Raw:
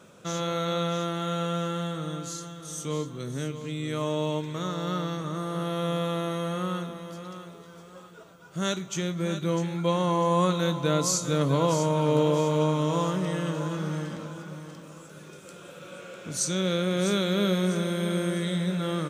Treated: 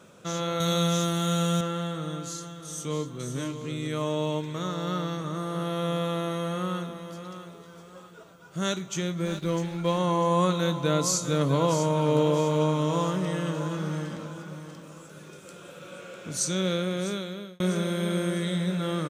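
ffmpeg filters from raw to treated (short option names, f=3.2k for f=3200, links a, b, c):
-filter_complex "[0:a]asettb=1/sr,asplit=3[a][b][c];[a]atrim=end=0.604[d];[b]atrim=start=0.6:end=1.61,asetpts=PTS-STARTPTS,afade=t=in:d=0.004:c=qsin,afade=t=out:st=1.006:d=0.004:c=qsin,bass=f=250:g=7,treble=f=4k:g=14[e];[c]atrim=start=1.606[f];[d][e]acrossfade=d=0.004:c1=hsin:c2=qsin[g];[g][f]acrossfade=d=0.004:c1=qsin:c2=hsin,asplit=2[h][i];[i]afade=t=in:st=2.69:d=0.01,afade=t=out:st=3.37:d=0.01,aecho=0:1:500|1000:0.473151|0.0473151[j];[h][j]amix=inputs=2:normalize=0,asettb=1/sr,asplit=3[k][l][m];[k]atrim=end=9.254[n];[l]atrim=start=9.25:end=9.98,asetpts=PTS-STARTPTS,afade=t=in:d=0.004:c=qsin,afade=t=out:st=0.726:d=0.004:c=qsin,aeval=exprs='sgn(val(0))*max(abs(val(0))-0.00668,0)':c=same[o];[m]atrim=start=9.976[p];[n][o]acrossfade=d=0.004:c1=hsin:c2=qsin[q];[q][p]acrossfade=d=0.004:c1=qsin:c2=hsin,asplit=2[r][s];[r]atrim=end=17.6,asetpts=PTS-STARTPTS,afade=t=out:st=16.66:d=0.94[t];[s]atrim=start=17.6,asetpts=PTS-STARTPTS,afade=t=in:d=0.004:c=hsin[u];[t][u]concat=n=2:v=0:a=1"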